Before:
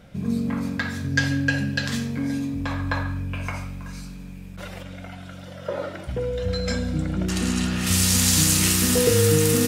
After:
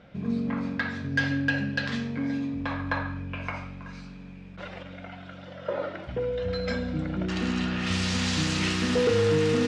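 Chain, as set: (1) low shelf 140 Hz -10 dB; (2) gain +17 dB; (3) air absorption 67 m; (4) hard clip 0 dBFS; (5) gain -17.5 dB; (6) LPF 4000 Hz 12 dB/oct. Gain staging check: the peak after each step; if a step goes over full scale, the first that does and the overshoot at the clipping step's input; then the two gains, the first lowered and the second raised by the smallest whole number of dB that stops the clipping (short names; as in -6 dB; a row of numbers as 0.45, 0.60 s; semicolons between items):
-6.5, +10.5, +9.0, 0.0, -17.5, -17.0 dBFS; step 2, 9.0 dB; step 2 +8 dB, step 5 -8.5 dB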